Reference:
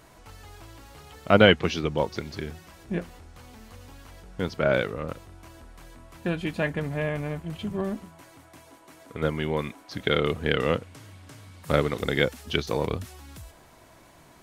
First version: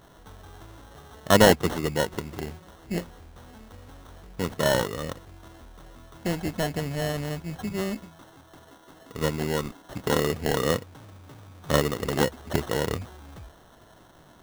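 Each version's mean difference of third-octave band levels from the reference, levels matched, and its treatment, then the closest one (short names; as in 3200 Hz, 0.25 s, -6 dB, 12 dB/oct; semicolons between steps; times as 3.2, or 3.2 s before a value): 4.5 dB: sample-rate reducer 2400 Hz, jitter 0%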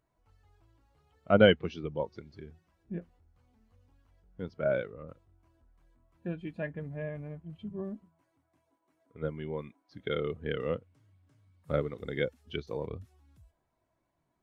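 12.5 dB: spectral expander 1.5:1; gain -5 dB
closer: first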